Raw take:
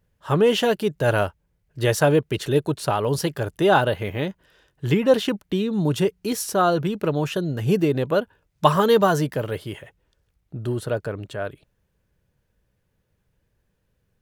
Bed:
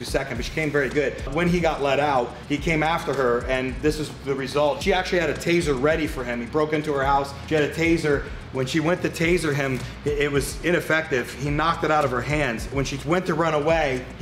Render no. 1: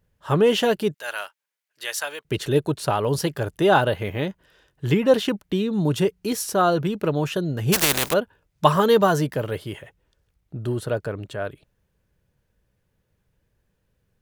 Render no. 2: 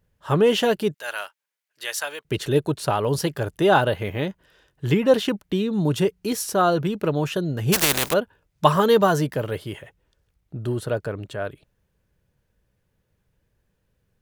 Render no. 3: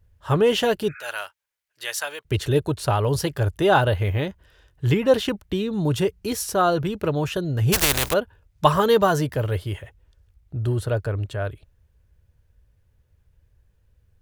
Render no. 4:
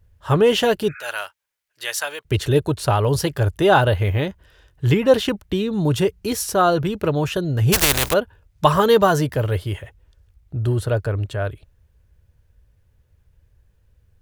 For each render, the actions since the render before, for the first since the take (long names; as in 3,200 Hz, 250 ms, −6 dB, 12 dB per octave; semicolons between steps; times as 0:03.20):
0:00.94–0:02.25: Bessel high-pass filter 1,800 Hz; 0:07.72–0:08.12: compressing power law on the bin magnitudes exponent 0.25
no processing that can be heard
0:00.85–0:01.06: healed spectral selection 1,200–2,600 Hz both; low shelf with overshoot 120 Hz +11 dB, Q 1.5
level +3 dB; brickwall limiter −1 dBFS, peak gain reduction 2 dB